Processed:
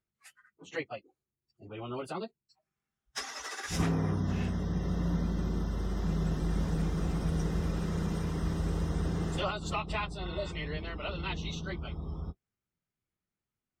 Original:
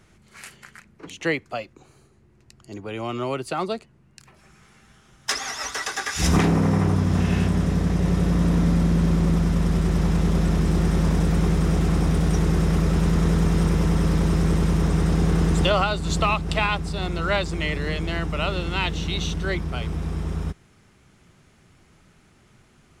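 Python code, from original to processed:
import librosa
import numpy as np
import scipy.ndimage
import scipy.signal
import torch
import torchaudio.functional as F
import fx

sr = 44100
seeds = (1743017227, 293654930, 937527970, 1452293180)

y = fx.noise_reduce_blind(x, sr, reduce_db=25)
y = fx.stretch_vocoder_free(y, sr, factor=0.6)
y = fx.spec_repair(y, sr, seeds[0], start_s=10.27, length_s=0.22, low_hz=760.0, high_hz=3900.0, source='before')
y = y * 10.0 ** (-7.5 / 20.0)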